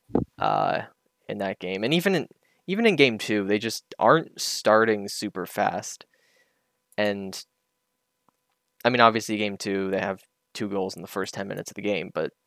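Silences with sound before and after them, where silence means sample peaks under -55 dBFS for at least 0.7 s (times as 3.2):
7.44–8.29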